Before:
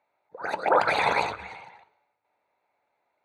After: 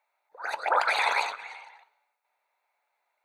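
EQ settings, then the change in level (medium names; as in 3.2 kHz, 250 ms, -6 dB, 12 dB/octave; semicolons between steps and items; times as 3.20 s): high-pass 840 Hz 12 dB/octave; treble shelf 6.3 kHz +5.5 dB; 0.0 dB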